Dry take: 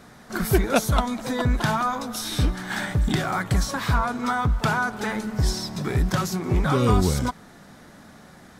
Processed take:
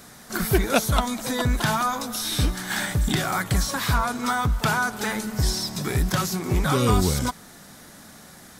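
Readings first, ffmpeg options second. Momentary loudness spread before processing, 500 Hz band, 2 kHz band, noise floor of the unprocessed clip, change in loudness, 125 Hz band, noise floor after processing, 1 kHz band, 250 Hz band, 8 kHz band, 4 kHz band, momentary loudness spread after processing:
7 LU, -1.0 dB, +1.0 dB, -48 dBFS, 0.0 dB, -1.0 dB, -47 dBFS, 0.0 dB, -1.0 dB, +4.5 dB, +3.5 dB, 6 LU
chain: -filter_complex "[0:a]crystalizer=i=3:c=0,acrossover=split=4100[a][b];[b]acompressor=threshold=-28dB:ratio=4:attack=1:release=60[c];[a][c]amix=inputs=2:normalize=0,volume=-1dB"

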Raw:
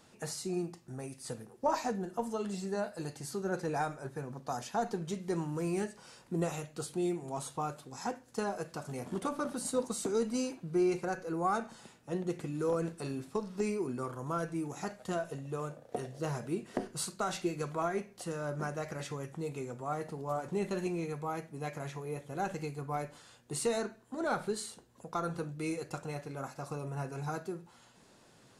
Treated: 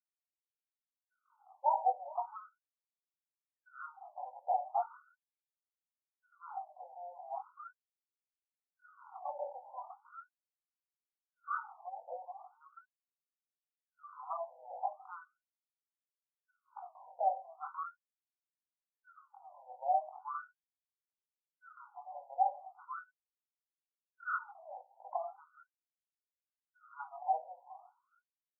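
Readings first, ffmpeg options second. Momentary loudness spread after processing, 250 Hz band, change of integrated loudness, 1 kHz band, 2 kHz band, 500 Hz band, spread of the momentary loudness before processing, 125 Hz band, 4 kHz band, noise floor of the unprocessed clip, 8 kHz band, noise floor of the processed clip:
21 LU, under -40 dB, -3.0 dB, +1.0 dB, -7.5 dB, -12.0 dB, 8 LU, under -40 dB, under -35 dB, -61 dBFS, under -35 dB, under -85 dBFS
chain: -filter_complex "[0:a]equalizer=f=760:t=o:w=0.25:g=13.5,aecho=1:1:420|840|1260|1680:0.126|0.0579|0.0266|0.0123,flanger=delay=17.5:depth=7.6:speed=0.48,acrossover=split=770[a][b];[a]aeval=exprs='val(0)*(1-1/2+1/2*cos(2*PI*1.5*n/s))':c=same[c];[b]aeval=exprs='val(0)*(1-1/2-1/2*cos(2*PI*1.5*n/s))':c=same[d];[c][d]amix=inputs=2:normalize=0,afftfilt=real='re*(1-between(b*sr/4096,1500,10000))':imag='im*(1-between(b*sr/4096,1500,10000))':win_size=4096:overlap=0.75,lowshelf=f=190:g=8,afftfilt=real='re*between(b*sr/1024,680*pow(4200/680,0.5+0.5*sin(2*PI*0.39*pts/sr))/1.41,680*pow(4200/680,0.5+0.5*sin(2*PI*0.39*pts/sr))*1.41)':imag='im*between(b*sr/1024,680*pow(4200/680,0.5+0.5*sin(2*PI*0.39*pts/sr))/1.41,680*pow(4200/680,0.5+0.5*sin(2*PI*0.39*pts/sr))*1.41)':win_size=1024:overlap=0.75,volume=5.5dB"

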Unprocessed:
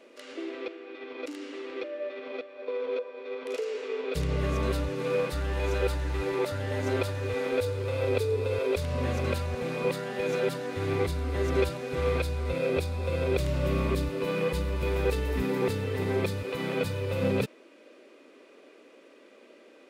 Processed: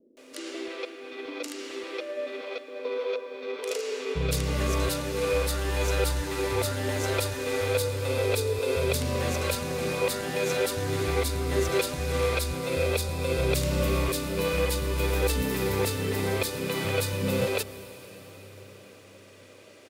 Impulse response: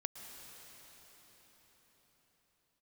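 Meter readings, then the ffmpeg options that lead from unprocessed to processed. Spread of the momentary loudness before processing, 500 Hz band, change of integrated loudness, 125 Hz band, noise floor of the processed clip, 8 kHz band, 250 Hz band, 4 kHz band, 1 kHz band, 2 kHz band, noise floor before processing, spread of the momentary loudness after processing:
10 LU, +1.0 dB, +2.0 dB, +1.0 dB, -51 dBFS, +13.0 dB, +0.5 dB, +7.5 dB, +3.0 dB, +4.0 dB, -55 dBFS, 11 LU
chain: -filter_complex "[0:a]bass=f=250:g=-2,treble=f=4k:g=10,acrossover=split=340[a][b];[b]adelay=170[c];[a][c]amix=inputs=2:normalize=0,asplit=2[d][e];[1:a]atrim=start_sample=2205,highshelf=f=9.7k:g=8.5[f];[e][f]afir=irnorm=-1:irlink=0,volume=-5.5dB[g];[d][g]amix=inputs=2:normalize=0"

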